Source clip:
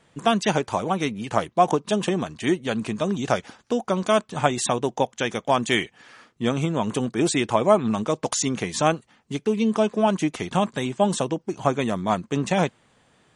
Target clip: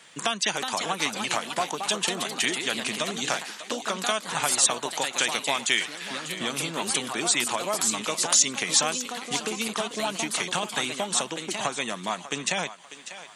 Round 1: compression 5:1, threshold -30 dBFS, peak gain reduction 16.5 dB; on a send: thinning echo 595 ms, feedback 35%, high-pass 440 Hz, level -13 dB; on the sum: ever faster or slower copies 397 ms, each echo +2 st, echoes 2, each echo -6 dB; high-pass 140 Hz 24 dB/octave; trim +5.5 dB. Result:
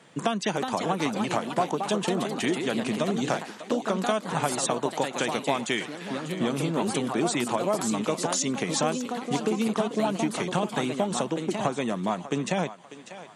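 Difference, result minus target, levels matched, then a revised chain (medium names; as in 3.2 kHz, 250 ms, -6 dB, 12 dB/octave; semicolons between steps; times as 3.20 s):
1 kHz band +3.0 dB
compression 5:1, threshold -30 dBFS, peak gain reduction 16.5 dB; tilt shelf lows -9.5 dB, about 990 Hz; on a send: thinning echo 595 ms, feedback 35%, high-pass 440 Hz, level -13 dB; on the sum: ever faster or slower copies 397 ms, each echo +2 st, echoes 2, each echo -6 dB; high-pass 140 Hz 24 dB/octave; trim +5.5 dB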